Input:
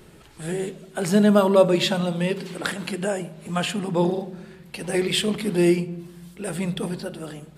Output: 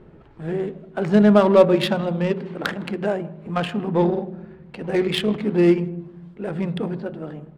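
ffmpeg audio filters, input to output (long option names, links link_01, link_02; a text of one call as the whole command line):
ffmpeg -i in.wav -filter_complex "[0:a]adynamicsmooth=sensitivity=1:basefreq=1300,bandreject=frequency=60:width_type=h:width=6,bandreject=frequency=120:width_type=h:width=6,bandreject=frequency=180:width_type=h:width=6,asplit=2[link_01][link_02];[link_02]adelay=160,highpass=300,lowpass=3400,asoftclip=type=hard:threshold=-14.5dB,volume=-24dB[link_03];[link_01][link_03]amix=inputs=2:normalize=0,volume=3dB" out.wav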